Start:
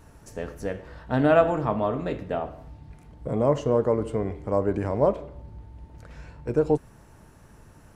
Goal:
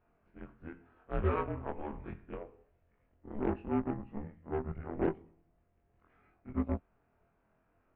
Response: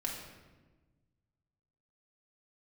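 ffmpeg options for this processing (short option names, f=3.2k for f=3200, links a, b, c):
-af "afftfilt=real='re':imag='-im':win_size=2048:overlap=0.75,aeval=exprs='0.266*(cos(1*acos(clip(val(0)/0.266,-1,1)))-cos(1*PI/2))+0.0211*(cos(7*acos(clip(val(0)/0.266,-1,1)))-cos(7*PI/2))+0.00266*(cos(8*acos(clip(val(0)/0.266,-1,1)))-cos(8*PI/2))':c=same,highpass=f=200:t=q:w=0.5412,highpass=f=200:t=q:w=1.307,lowpass=f=2.9k:t=q:w=0.5176,lowpass=f=2.9k:t=q:w=0.7071,lowpass=f=2.9k:t=q:w=1.932,afreqshift=-220,volume=-5dB"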